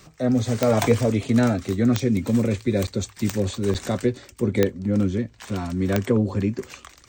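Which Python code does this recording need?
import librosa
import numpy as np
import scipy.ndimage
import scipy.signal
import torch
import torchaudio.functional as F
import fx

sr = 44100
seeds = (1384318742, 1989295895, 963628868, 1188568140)

y = fx.fix_declip(x, sr, threshold_db=-8.0)
y = fx.fix_declick_ar(y, sr, threshold=10.0)
y = fx.fix_interpolate(y, sr, at_s=(2.87, 3.74), length_ms=8.0)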